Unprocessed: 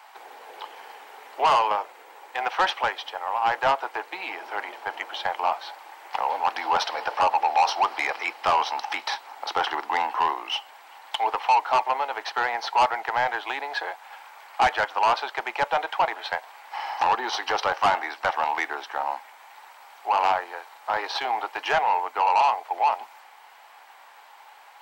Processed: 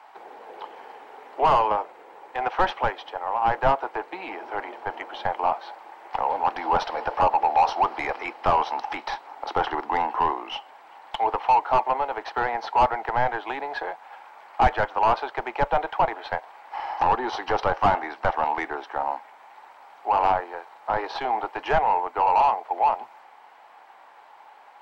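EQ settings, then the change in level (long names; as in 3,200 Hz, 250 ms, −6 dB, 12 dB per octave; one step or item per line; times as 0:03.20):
spectral tilt −4 dB per octave
0.0 dB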